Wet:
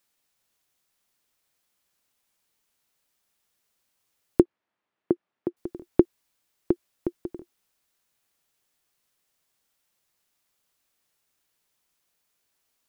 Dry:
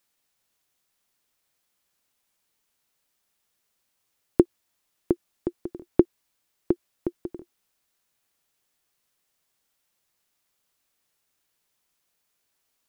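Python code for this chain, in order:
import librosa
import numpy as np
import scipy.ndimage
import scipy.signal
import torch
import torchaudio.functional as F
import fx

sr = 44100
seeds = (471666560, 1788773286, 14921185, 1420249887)

y = fx.bandpass_edges(x, sr, low_hz=140.0, high_hz=2000.0, at=(4.42, 5.57))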